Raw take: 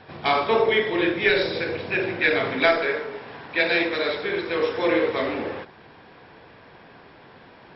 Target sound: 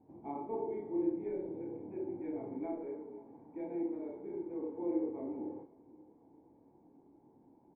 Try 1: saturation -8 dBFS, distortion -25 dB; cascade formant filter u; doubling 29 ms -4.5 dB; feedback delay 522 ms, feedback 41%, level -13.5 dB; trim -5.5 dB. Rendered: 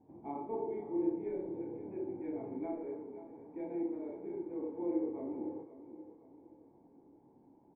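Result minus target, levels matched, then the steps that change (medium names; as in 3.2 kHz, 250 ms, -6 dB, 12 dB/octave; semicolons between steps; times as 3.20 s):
echo-to-direct +10.5 dB
change: feedback delay 522 ms, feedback 41%, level -24 dB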